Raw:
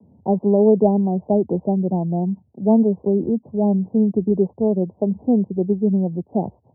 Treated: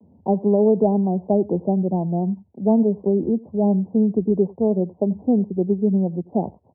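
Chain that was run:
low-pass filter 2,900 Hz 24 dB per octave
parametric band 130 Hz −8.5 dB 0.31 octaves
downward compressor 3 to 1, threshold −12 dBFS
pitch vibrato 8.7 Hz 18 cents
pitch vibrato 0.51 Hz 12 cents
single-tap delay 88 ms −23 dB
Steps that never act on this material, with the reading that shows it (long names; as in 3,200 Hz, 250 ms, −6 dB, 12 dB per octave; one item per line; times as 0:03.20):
low-pass filter 2,900 Hz: nothing at its input above 910 Hz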